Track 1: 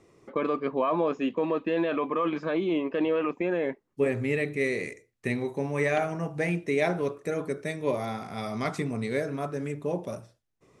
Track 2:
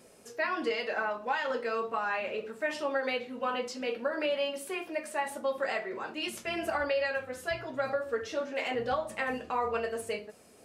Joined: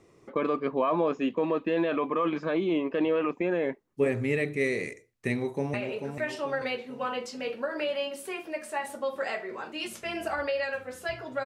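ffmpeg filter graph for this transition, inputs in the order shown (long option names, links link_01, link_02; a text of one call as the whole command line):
ffmpeg -i cue0.wav -i cue1.wav -filter_complex "[0:a]apad=whole_dur=11.45,atrim=end=11.45,atrim=end=5.742[link_01];[1:a]atrim=start=2.158:end=7.87[link_02];[link_01][link_02]acrossfade=duration=0.004:curve1=hsin:curve2=hsin,asplit=2[link_03][link_04];[link_04]afade=type=in:start_time=5.29:duration=0.01,afade=type=out:start_time=5.74:duration=0.01,aecho=0:1:440|880|1320|1760|2200:0.501187|0.225534|0.10149|0.0456707|0.0205518[link_05];[link_03][link_05]amix=inputs=2:normalize=0" out.wav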